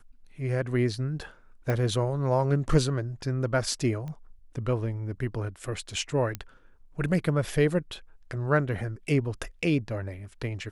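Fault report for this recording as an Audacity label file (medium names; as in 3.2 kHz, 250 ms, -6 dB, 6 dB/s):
1.700000	1.700000	pop -17 dBFS
4.080000	4.080000	pop -27 dBFS
6.350000	6.350000	pop -17 dBFS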